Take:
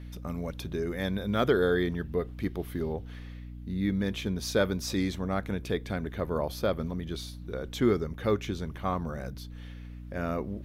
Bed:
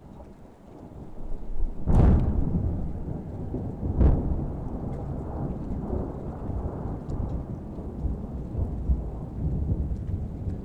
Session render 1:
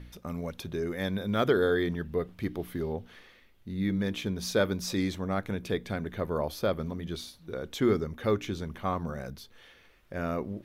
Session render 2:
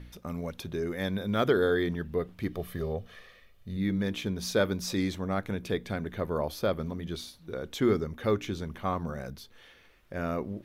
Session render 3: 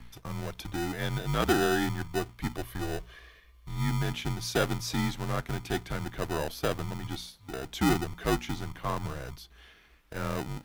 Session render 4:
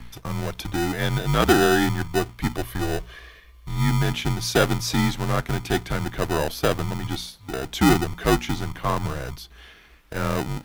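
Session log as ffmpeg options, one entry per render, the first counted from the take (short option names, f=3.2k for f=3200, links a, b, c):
-af "bandreject=f=60:t=h:w=4,bandreject=f=120:t=h:w=4,bandreject=f=180:t=h:w=4,bandreject=f=240:t=h:w=4,bandreject=f=300:t=h:w=4"
-filter_complex "[0:a]asettb=1/sr,asplit=3[a][b][c];[a]atrim=end=2.524[d];[b]atrim=start=2.52:end=3.77,asetpts=PTS-STARTPTS,afade=t=in:d=0.004:c=qsin,afade=t=out:st=1.246:d=0.004:c=qsin,aecho=1:1:1.7:0.64,atrim=end_sample=55125[e];[c]atrim=start=3.766[f];[d][e]acrossfade=d=0.004:c1=hsin:c2=qsin[g];[g][f]acrossfade=d=0.004:c1=qsin:c2=hsin"
-filter_complex "[0:a]afreqshift=-63,acrossover=split=540[a][b];[a]acrusher=samples=40:mix=1:aa=0.000001[c];[c][b]amix=inputs=2:normalize=0"
-af "volume=8dB"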